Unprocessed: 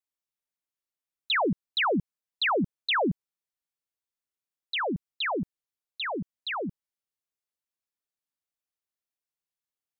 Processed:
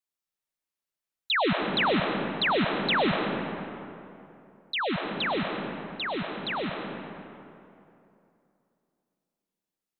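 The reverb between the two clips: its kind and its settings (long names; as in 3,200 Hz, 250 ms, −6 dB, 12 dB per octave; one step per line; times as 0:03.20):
comb and all-pass reverb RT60 2.8 s, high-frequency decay 0.55×, pre-delay 70 ms, DRR 2 dB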